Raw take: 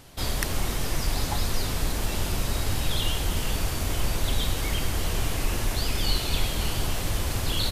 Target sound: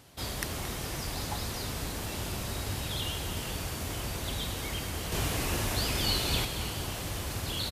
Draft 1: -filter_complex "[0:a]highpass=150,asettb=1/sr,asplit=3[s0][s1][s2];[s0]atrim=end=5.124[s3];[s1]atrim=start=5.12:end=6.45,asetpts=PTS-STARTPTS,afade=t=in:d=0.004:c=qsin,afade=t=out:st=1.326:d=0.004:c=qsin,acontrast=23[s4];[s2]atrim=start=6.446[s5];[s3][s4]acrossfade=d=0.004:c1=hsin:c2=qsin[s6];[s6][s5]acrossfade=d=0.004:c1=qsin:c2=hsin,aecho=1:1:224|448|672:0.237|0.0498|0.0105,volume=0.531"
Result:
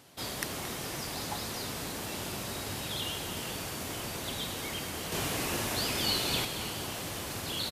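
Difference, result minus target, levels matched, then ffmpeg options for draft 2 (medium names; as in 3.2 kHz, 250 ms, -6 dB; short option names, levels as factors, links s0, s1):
125 Hz band -5.5 dB
-filter_complex "[0:a]highpass=63,asettb=1/sr,asplit=3[s0][s1][s2];[s0]atrim=end=5.124[s3];[s1]atrim=start=5.12:end=6.45,asetpts=PTS-STARTPTS,afade=t=in:d=0.004:c=qsin,afade=t=out:st=1.326:d=0.004:c=qsin,acontrast=23[s4];[s2]atrim=start=6.446[s5];[s3][s4]acrossfade=d=0.004:c1=hsin:c2=qsin[s6];[s6][s5]acrossfade=d=0.004:c1=qsin:c2=hsin,aecho=1:1:224|448|672:0.237|0.0498|0.0105,volume=0.531"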